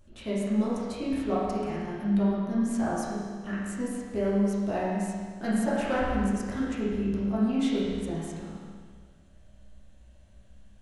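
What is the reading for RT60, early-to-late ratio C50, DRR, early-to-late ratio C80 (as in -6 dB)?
1.7 s, -2.0 dB, -9.5 dB, 0.0 dB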